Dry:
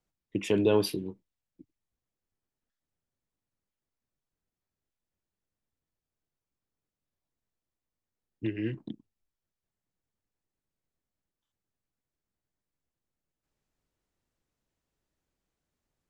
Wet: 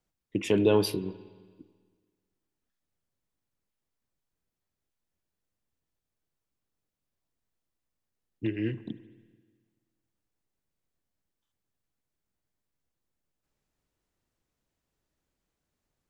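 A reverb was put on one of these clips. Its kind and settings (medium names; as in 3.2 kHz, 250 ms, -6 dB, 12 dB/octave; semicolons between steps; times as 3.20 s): spring tank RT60 1.6 s, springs 48/54 ms, chirp 40 ms, DRR 15.5 dB; trim +1.5 dB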